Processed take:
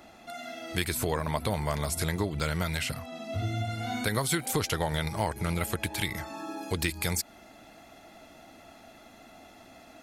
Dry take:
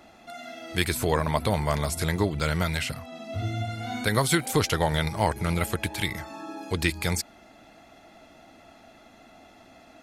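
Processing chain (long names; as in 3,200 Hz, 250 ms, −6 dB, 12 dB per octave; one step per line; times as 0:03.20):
high-shelf EQ 9,700 Hz +5 dB, from 0:06.37 +10.5 dB
downward compressor 2.5 to 1, threshold −27 dBFS, peak gain reduction 7 dB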